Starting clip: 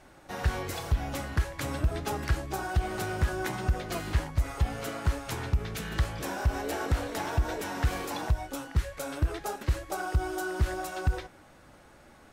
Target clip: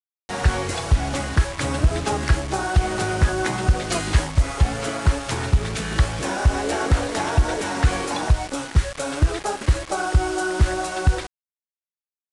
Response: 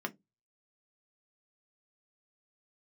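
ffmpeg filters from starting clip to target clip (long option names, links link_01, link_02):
-filter_complex "[0:a]asettb=1/sr,asplit=3[link_01][link_02][link_03];[link_01]atrim=end=3.824[link_04];[link_02]atrim=start=3.82:end=4.32,asetpts=PTS-STARTPTS,afade=type=in:duration=0.004:curve=qsin,afade=type=out:start_time=0.496:duration=0.004:curve=qsin,highshelf=frequency=3900:gain=7.5[link_05];[link_03]atrim=start=4.316[link_06];[link_04][link_05]acrossfade=duration=0.004:curve1=hsin:curve2=qsin[link_07];[link_07][link_06]acrossfade=duration=0.004:curve1=qsin:curve2=hsin,acrusher=bits=6:mix=0:aa=0.000001,aresample=22050,aresample=44100,volume=9dB"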